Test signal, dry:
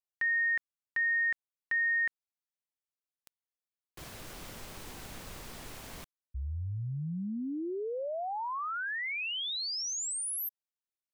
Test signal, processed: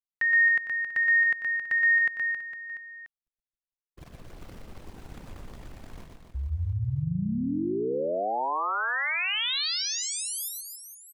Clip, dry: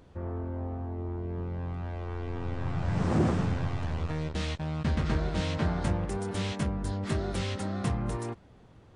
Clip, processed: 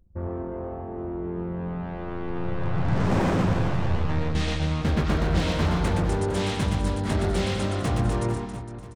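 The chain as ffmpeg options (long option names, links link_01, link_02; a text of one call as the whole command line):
ffmpeg -i in.wav -filter_complex "[0:a]anlmdn=0.1,aeval=exprs='0.0668*(abs(mod(val(0)/0.0668+3,4)-2)-1)':channel_layout=same,acrossover=split=4500[link_01][link_02];[link_02]acompressor=threshold=-40dB:ratio=4:attack=1:release=60[link_03];[link_01][link_03]amix=inputs=2:normalize=0,aecho=1:1:120|270|457.5|691.9|984.8:0.631|0.398|0.251|0.158|0.1,volume=5dB" out.wav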